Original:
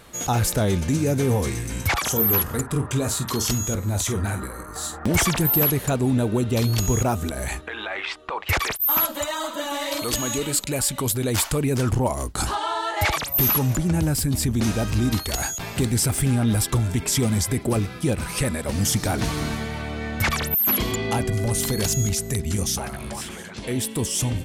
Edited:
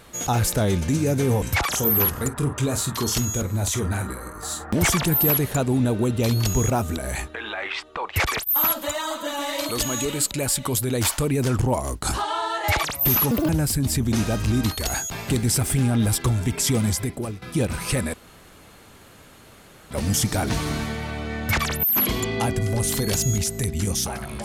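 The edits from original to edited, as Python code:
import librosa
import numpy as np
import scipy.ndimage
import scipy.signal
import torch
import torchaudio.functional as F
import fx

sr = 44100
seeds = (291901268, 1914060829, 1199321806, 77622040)

y = fx.edit(x, sr, fx.cut(start_s=1.42, length_s=0.33),
    fx.speed_span(start_s=13.64, length_s=0.33, speed=1.85),
    fx.fade_out_to(start_s=17.34, length_s=0.56, floor_db=-15.0),
    fx.insert_room_tone(at_s=18.62, length_s=1.77), tone=tone)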